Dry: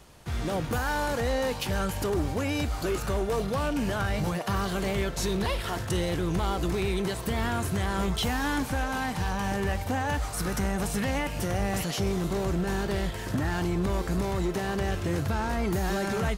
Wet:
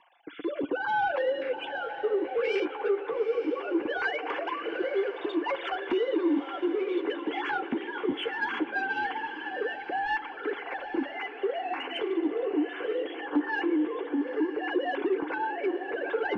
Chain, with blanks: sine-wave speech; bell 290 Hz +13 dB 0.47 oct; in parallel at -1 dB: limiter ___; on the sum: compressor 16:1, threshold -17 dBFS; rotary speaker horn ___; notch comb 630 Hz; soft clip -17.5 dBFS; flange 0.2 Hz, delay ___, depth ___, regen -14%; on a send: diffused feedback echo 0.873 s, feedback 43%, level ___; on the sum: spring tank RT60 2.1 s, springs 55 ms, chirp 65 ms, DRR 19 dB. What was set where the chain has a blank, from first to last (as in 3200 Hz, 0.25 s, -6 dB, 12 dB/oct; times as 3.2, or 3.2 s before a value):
-15 dBFS, 0.65 Hz, 5.3 ms, 8.1 ms, -11 dB